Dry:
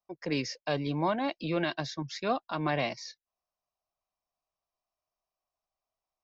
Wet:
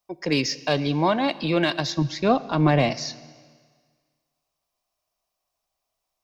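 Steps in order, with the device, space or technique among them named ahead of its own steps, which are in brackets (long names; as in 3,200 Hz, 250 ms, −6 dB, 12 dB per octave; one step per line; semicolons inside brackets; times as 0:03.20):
0:01.92–0:02.91: spectral tilt −2.5 dB per octave
exciter from parts (in parallel at −4 dB: high-pass filter 2,100 Hz 12 dB per octave + soft clipping −31.5 dBFS, distortion −16 dB)
on the sum: four-comb reverb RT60 1.7 s, combs from 26 ms, DRR 16.5 dB
level +8 dB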